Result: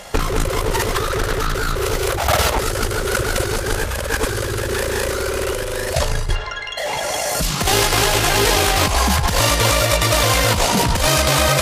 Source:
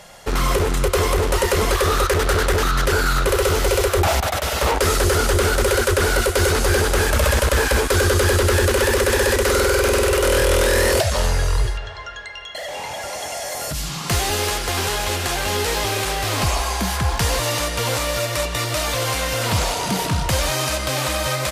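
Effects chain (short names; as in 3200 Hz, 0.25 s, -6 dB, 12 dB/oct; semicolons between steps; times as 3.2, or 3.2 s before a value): granular stretch 0.54×, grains 38 ms; negative-ratio compressor -22 dBFS, ratio -0.5; gain +5 dB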